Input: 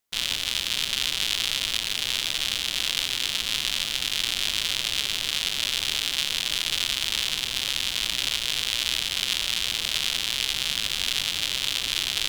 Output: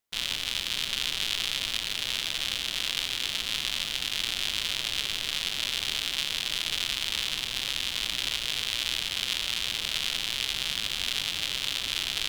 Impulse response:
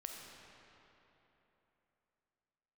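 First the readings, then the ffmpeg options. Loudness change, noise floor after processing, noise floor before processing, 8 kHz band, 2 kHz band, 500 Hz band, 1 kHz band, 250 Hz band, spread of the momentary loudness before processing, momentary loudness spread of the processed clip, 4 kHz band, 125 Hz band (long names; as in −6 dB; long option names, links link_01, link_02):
−3.5 dB, −35 dBFS, −32 dBFS, −5.5 dB, −3.0 dB, −2.5 dB, −2.5 dB, −2.5 dB, 1 LU, 1 LU, −3.5 dB, −2.5 dB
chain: -filter_complex "[0:a]asplit=2[link_01][link_02];[1:a]atrim=start_sample=2205,lowpass=5200[link_03];[link_02][link_03]afir=irnorm=-1:irlink=0,volume=-5.5dB[link_04];[link_01][link_04]amix=inputs=2:normalize=0,volume=-5dB"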